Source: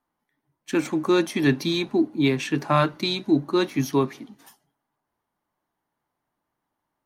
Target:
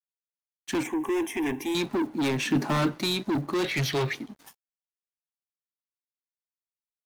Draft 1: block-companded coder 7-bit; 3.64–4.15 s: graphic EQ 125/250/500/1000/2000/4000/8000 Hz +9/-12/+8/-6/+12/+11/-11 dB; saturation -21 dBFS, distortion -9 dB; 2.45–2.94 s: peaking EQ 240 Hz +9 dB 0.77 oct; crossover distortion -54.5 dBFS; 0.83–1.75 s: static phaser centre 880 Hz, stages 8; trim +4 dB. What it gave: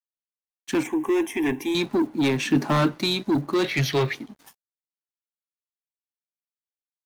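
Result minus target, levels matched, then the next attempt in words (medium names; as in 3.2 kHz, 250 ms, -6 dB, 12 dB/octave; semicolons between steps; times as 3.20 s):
saturation: distortion -4 dB
block-companded coder 7-bit; 3.64–4.15 s: graphic EQ 125/250/500/1000/2000/4000/8000 Hz +9/-12/+8/-6/+12/+11/-11 dB; saturation -27 dBFS, distortion -5 dB; 2.45–2.94 s: peaking EQ 240 Hz +9 dB 0.77 oct; crossover distortion -54.5 dBFS; 0.83–1.75 s: static phaser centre 880 Hz, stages 8; trim +4 dB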